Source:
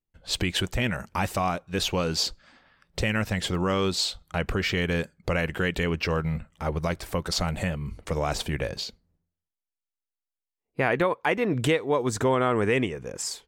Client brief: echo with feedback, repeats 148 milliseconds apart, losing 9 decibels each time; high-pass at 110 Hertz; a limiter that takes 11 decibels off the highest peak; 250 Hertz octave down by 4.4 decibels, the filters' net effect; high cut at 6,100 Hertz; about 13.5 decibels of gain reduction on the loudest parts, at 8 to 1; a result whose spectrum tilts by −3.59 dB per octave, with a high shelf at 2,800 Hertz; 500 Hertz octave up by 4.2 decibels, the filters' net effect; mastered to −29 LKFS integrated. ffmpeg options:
ffmpeg -i in.wav -af "highpass=110,lowpass=6100,equalizer=frequency=250:width_type=o:gain=-9,equalizer=frequency=500:width_type=o:gain=7,highshelf=frequency=2800:gain=4.5,acompressor=threshold=-30dB:ratio=8,alimiter=level_in=3dB:limit=-24dB:level=0:latency=1,volume=-3dB,aecho=1:1:148|296|444|592:0.355|0.124|0.0435|0.0152,volume=8.5dB" out.wav

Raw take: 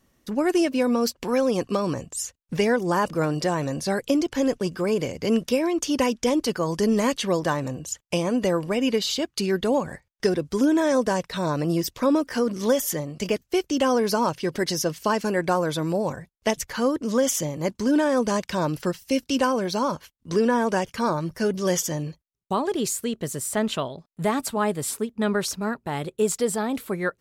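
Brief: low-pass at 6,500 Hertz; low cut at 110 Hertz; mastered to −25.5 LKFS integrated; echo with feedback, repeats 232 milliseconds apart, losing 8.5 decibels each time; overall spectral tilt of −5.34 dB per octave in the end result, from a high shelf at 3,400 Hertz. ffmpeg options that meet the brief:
ffmpeg -i in.wav -af "highpass=110,lowpass=6500,highshelf=frequency=3400:gain=-8,aecho=1:1:232|464|696|928:0.376|0.143|0.0543|0.0206,volume=-1dB" out.wav

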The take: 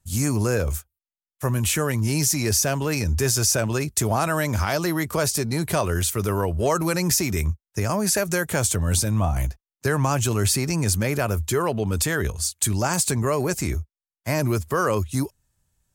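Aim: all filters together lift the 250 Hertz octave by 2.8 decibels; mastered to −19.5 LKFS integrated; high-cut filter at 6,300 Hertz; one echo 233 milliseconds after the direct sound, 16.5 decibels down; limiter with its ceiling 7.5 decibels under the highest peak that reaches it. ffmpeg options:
ffmpeg -i in.wav -af "lowpass=6300,equalizer=frequency=250:width_type=o:gain=4,alimiter=limit=-15.5dB:level=0:latency=1,aecho=1:1:233:0.15,volume=5.5dB" out.wav

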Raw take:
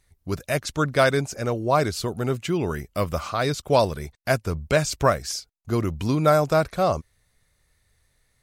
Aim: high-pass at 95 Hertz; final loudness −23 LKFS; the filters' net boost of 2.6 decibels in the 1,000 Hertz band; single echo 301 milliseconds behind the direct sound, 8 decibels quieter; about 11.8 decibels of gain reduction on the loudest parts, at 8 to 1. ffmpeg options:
ffmpeg -i in.wav -af "highpass=95,equalizer=frequency=1000:width_type=o:gain=3.5,acompressor=threshold=-24dB:ratio=8,aecho=1:1:301:0.398,volume=6.5dB" out.wav

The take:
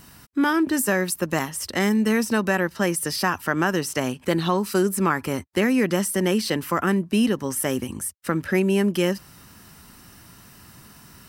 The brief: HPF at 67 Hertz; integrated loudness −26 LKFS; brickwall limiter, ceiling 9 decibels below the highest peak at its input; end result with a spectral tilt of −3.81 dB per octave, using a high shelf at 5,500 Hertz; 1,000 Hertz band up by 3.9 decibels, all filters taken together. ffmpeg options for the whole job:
ffmpeg -i in.wav -af "highpass=67,equalizer=frequency=1000:width_type=o:gain=4.5,highshelf=frequency=5500:gain=9,volume=-2dB,alimiter=limit=-15.5dB:level=0:latency=1" out.wav

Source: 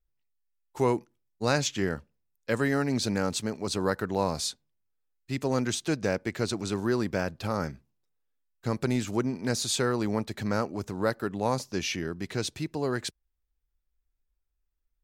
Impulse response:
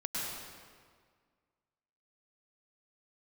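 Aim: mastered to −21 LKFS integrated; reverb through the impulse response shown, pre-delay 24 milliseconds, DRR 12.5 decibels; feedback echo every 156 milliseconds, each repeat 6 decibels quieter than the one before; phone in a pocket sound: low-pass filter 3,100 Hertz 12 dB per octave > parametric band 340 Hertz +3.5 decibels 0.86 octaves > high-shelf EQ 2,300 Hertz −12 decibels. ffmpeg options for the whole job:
-filter_complex "[0:a]aecho=1:1:156|312|468|624|780|936:0.501|0.251|0.125|0.0626|0.0313|0.0157,asplit=2[link_01][link_02];[1:a]atrim=start_sample=2205,adelay=24[link_03];[link_02][link_03]afir=irnorm=-1:irlink=0,volume=-17dB[link_04];[link_01][link_04]amix=inputs=2:normalize=0,lowpass=3100,equalizer=frequency=340:width_type=o:width=0.86:gain=3.5,highshelf=frequency=2300:gain=-12,volume=7dB"

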